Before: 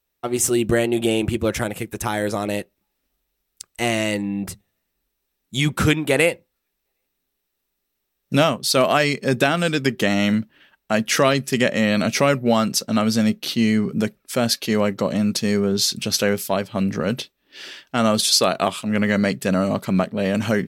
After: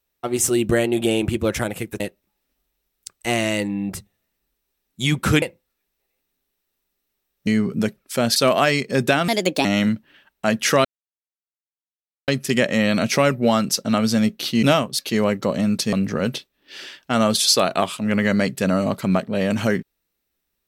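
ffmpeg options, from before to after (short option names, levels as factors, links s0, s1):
-filter_complex "[0:a]asplit=11[s0][s1][s2][s3][s4][s5][s6][s7][s8][s9][s10];[s0]atrim=end=2.002[s11];[s1]atrim=start=2.538:end=5.962[s12];[s2]atrim=start=6.278:end=8.332[s13];[s3]atrim=start=13.658:end=14.552[s14];[s4]atrim=start=8.688:end=9.614[s15];[s5]atrim=start=9.61:end=10.11,asetpts=PTS-STARTPTS,asetrate=59976,aresample=44100,atrim=end_sample=16213,asetpts=PTS-STARTPTS[s16];[s6]atrim=start=10.106:end=11.31,asetpts=PTS-STARTPTS,afade=t=out:st=1.2:d=0.004:c=hsin,apad=pad_dur=1.43[s17];[s7]atrim=start=11.31:end=13.662,asetpts=PTS-STARTPTS,afade=t=in:d=0.004:c=hsin[s18];[s8]atrim=start=8.328:end=8.692[s19];[s9]atrim=start=14.548:end=15.492[s20];[s10]atrim=start=16.768[s21];[s11][s12]acrossfade=d=0.004:c1=hsin:c2=hsin[s22];[s22][s13]acrossfade=d=0.004:c1=hsin:c2=hsin[s23];[s23][s14]acrossfade=d=0.004:c1=hsin:c2=hsin[s24];[s24][s15]acrossfade=d=0.004:c1=hsin:c2=hsin[s25];[s25][s16]acrossfade=d=0.004:c1=hsin:c2=hsin[s26];[s17][s18]concat=n=2:v=0:a=1[s27];[s26][s27]acrossfade=d=0.004:c1=hsin:c2=hsin[s28];[s28][s19]acrossfade=d=0.004:c1=hsin:c2=hsin[s29];[s29][s20]acrossfade=d=0.004:c1=hsin:c2=hsin[s30];[s30][s21]acrossfade=d=0.004:c1=hsin:c2=hsin"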